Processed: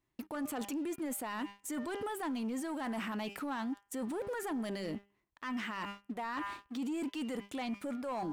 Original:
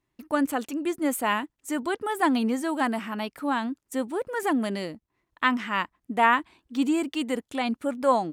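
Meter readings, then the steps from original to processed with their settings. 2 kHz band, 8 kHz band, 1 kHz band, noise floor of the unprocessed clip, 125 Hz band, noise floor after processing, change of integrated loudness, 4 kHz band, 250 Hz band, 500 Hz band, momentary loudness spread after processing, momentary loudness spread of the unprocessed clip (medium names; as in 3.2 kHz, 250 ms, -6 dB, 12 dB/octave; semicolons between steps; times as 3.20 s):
-14.0 dB, -7.0 dB, -14.5 dB, -80 dBFS, -7.0 dB, -79 dBFS, -12.0 dB, -11.5 dB, -10.0 dB, -12.0 dB, 4 LU, 8 LU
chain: de-hum 200.9 Hz, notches 16; reverse; compression 10:1, threshold -32 dBFS, peak gain reduction 17 dB; reverse; waveshaping leveller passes 2; peak limiter -32 dBFS, peak gain reduction 11 dB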